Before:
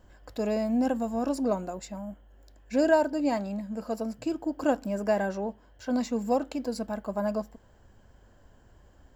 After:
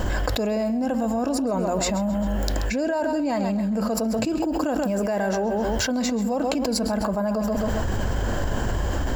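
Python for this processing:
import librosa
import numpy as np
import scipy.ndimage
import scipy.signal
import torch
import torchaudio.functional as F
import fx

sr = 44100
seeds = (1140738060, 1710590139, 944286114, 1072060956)

y = fx.high_shelf(x, sr, hz=7200.0, db=5.5, at=(4.41, 6.02))
y = fx.echo_feedback(y, sr, ms=132, feedback_pct=29, wet_db=-12.0)
y = fx.env_flatten(y, sr, amount_pct=100)
y = F.gain(torch.from_numpy(y), -6.0).numpy()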